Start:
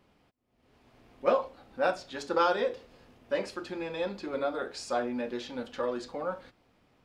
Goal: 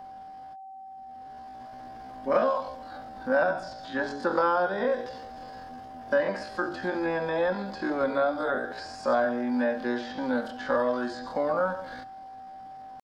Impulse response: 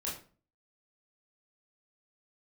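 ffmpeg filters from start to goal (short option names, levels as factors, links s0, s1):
-filter_complex "[0:a]acrossover=split=2600[s0][s1];[s1]acompressor=threshold=0.00178:ratio=4:attack=1:release=60[s2];[s0][s2]amix=inputs=2:normalize=0,equalizer=f=250:t=o:w=0.33:g=6,equalizer=f=400:t=o:w=0.33:g=-3,equalizer=f=630:t=o:w=0.33:g=10,equalizer=f=1000:t=o:w=0.33:g=6,equalizer=f=1600:t=o:w=0.33:g=9,equalizer=f=2500:t=o:w=0.33:g=-7,equalizer=f=5000:t=o:w=0.33:g=7,acrossover=split=240|1000|2200[s3][s4][s5][s6];[s3]acompressor=threshold=0.00631:ratio=4[s7];[s4]acompressor=threshold=0.02:ratio=4[s8];[s5]acompressor=threshold=0.0112:ratio=4[s9];[s6]acompressor=threshold=0.00316:ratio=4[s10];[s7][s8][s9][s10]amix=inputs=4:normalize=0,atempo=0.54,aeval=exprs='val(0)+0.00398*sin(2*PI*770*n/s)':c=same,volume=2.24"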